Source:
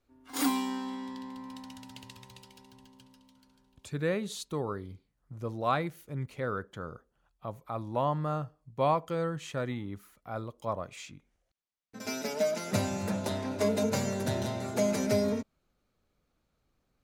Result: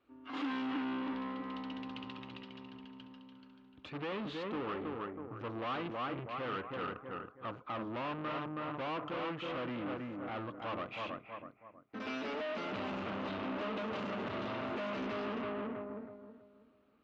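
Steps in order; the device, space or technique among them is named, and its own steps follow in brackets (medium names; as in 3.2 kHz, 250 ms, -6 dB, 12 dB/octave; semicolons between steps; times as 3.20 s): analogue delay pedal into a guitar amplifier (bucket-brigade echo 322 ms, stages 4096, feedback 32%, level -7 dB; valve stage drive 44 dB, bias 0.65; cabinet simulation 95–3500 Hz, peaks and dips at 100 Hz -7 dB, 150 Hz -7 dB, 300 Hz +7 dB, 1.2 kHz +7 dB, 2.8 kHz +5 dB); trim +6 dB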